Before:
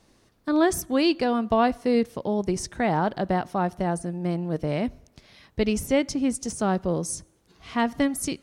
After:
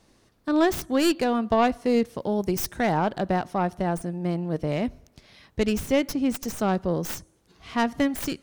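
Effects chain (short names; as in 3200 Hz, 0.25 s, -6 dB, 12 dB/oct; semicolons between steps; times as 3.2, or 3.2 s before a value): tracing distortion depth 0.13 ms; 2.15–2.91 high shelf 10000 Hz -> 5800 Hz +9 dB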